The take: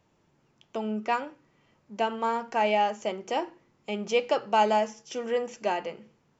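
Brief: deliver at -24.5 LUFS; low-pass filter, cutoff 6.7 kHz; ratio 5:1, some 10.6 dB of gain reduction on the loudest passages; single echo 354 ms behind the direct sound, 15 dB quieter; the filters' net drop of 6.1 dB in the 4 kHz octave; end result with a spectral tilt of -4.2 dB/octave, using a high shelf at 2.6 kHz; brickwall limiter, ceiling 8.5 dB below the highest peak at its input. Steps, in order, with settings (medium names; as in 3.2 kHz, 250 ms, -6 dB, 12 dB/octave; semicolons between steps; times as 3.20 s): low-pass 6.7 kHz; treble shelf 2.6 kHz -3 dB; peaking EQ 4 kHz -7 dB; compression 5:1, threshold -32 dBFS; peak limiter -29.5 dBFS; delay 354 ms -15 dB; trim +15.5 dB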